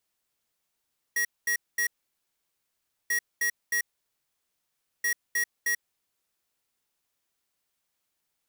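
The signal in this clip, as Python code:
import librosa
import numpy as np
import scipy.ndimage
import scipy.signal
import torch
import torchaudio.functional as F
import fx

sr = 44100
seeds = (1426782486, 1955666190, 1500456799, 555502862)

y = fx.beep_pattern(sr, wave='square', hz=1900.0, on_s=0.09, off_s=0.22, beeps=3, pause_s=1.23, groups=3, level_db=-26.0)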